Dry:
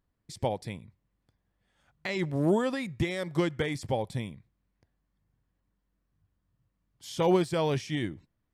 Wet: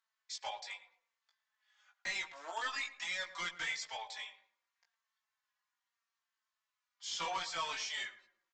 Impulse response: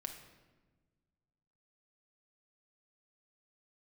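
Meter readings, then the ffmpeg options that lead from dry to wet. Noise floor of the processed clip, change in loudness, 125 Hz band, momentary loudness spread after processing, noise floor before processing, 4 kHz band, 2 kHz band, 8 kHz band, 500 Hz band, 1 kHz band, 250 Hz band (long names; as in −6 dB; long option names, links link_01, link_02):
below −85 dBFS, −9.5 dB, −34.0 dB, 9 LU, −79 dBFS, +0.5 dB, −0.5 dB, +1.5 dB, −22.0 dB, −6.0 dB, −32.5 dB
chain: -filter_complex "[0:a]highpass=frequency=1000:width=0.5412,highpass=frequency=1000:width=1.3066,highshelf=frequency=2800:gain=3,aresample=16000,volume=34.5dB,asoftclip=hard,volume=-34.5dB,aresample=44100,asplit=2[link_01][link_02];[link_02]adelay=18,volume=-3.5dB[link_03];[link_01][link_03]amix=inputs=2:normalize=0,asplit=2[link_04][link_05];[link_05]adelay=109,lowpass=frequency=1400:poles=1,volume=-12.5dB,asplit=2[link_06][link_07];[link_07]adelay=109,lowpass=frequency=1400:poles=1,volume=0.4,asplit=2[link_08][link_09];[link_09]adelay=109,lowpass=frequency=1400:poles=1,volume=0.4,asplit=2[link_10][link_11];[link_11]adelay=109,lowpass=frequency=1400:poles=1,volume=0.4[link_12];[link_06][link_08][link_10][link_12]amix=inputs=4:normalize=0[link_13];[link_04][link_13]amix=inputs=2:normalize=0,asplit=2[link_14][link_15];[link_15]adelay=4,afreqshift=-0.79[link_16];[link_14][link_16]amix=inputs=2:normalize=1,volume=2.5dB"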